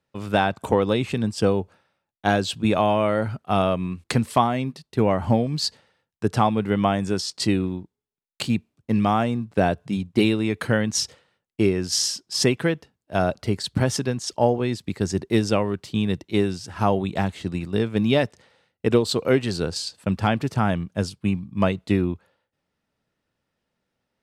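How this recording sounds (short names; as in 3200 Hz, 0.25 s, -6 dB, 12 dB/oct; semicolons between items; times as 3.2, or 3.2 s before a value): noise floor -83 dBFS; spectral tilt -5.5 dB/oct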